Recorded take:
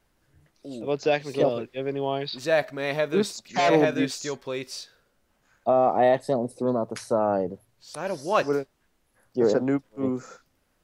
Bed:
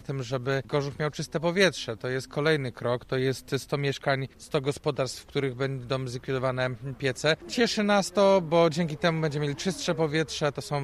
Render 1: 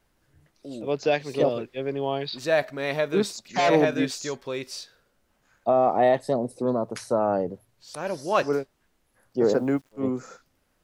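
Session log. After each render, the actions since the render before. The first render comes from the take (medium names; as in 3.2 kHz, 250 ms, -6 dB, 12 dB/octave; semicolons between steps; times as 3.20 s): 9.49–9.92 s: word length cut 10-bit, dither none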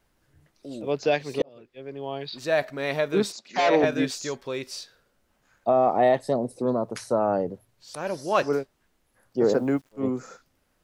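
1.42–2.71 s: fade in; 3.32–3.84 s: band-pass 260–5900 Hz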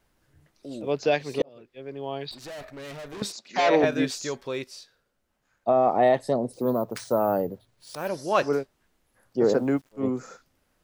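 2.31–3.22 s: valve stage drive 37 dB, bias 0.7; 4.64–5.85 s: upward expansion, over -32 dBFS; 6.53–8.09 s: careless resampling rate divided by 3×, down none, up hold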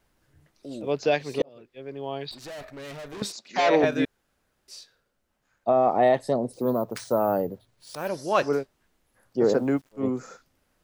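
4.05–4.68 s: room tone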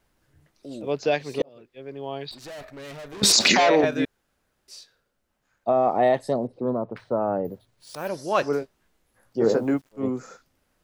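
3.23–3.81 s: level flattener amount 100%; 6.47–7.45 s: distance through air 440 m; 8.60–9.74 s: doubling 18 ms -7.5 dB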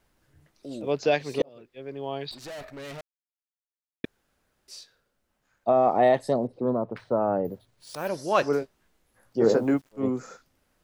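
3.01–4.04 s: mute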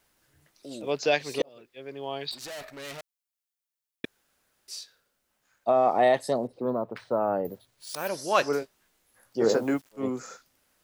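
tilt EQ +2 dB/octave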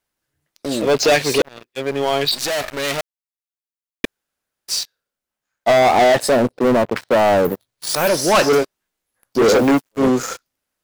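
waveshaping leveller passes 5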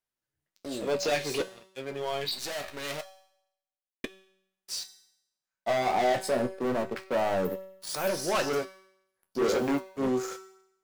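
feedback comb 190 Hz, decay 0.77 s, harmonics all, mix 70%; flange 0.24 Hz, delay 7.5 ms, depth 9.1 ms, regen -53%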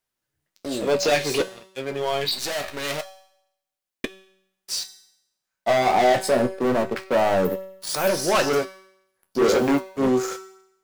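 trim +7.5 dB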